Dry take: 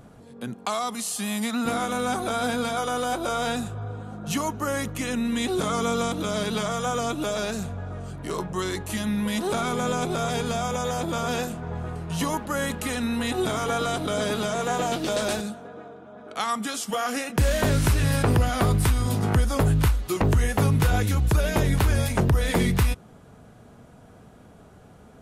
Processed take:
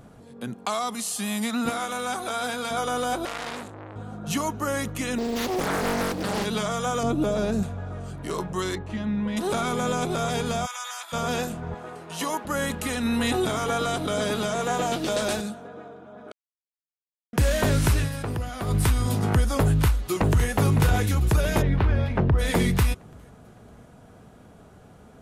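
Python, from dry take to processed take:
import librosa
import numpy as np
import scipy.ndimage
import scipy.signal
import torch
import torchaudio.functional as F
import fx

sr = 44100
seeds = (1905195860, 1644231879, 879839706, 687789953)

y = fx.low_shelf(x, sr, hz=380.0, db=-11.5, at=(1.7, 2.71))
y = fx.transformer_sat(y, sr, knee_hz=3000.0, at=(3.25, 3.96))
y = fx.doppler_dist(y, sr, depth_ms=0.98, at=(5.18, 6.45))
y = fx.tilt_shelf(y, sr, db=7.5, hz=840.0, at=(7.03, 7.63))
y = fx.spacing_loss(y, sr, db_at_10k=29, at=(8.75, 9.37))
y = fx.highpass(y, sr, hz=1100.0, slope=24, at=(10.65, 11.12), fade=0.02)
y = fx.highpass(y, sr, hz=320.0, slope=12, at=(11.74, 12.45))
y = fx.env_flatten(y, sr, amount_pct=70, at=(13.05, 13.45))
y = fx.echo_throw(y, sr, start_s=19.65, length_s=0.84, ms=560, feedback_pct=55, wet_db=-9.5)
y = fx.air_absorb(y, sr, metres=350.0, at=(21.61, 22.38), fade=0.02)
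y = fx.edit(y, sr, fx.silence(start_s=16.32, length_s=1.01),
    fx.fade_down_up(start_s=17.98, length_s=0.79, db=-9.0, fade_s=0.12), tone=tone)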